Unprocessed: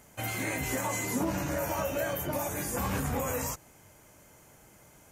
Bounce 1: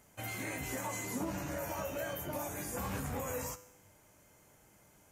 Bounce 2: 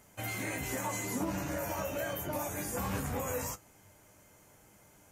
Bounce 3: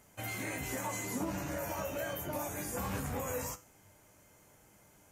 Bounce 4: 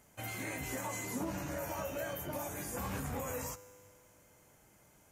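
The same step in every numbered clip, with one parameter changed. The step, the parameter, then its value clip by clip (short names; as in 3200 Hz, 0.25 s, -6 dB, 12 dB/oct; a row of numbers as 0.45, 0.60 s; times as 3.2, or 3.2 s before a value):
resonator, decay: 0.86, 0.15, 0.37, 2.2 s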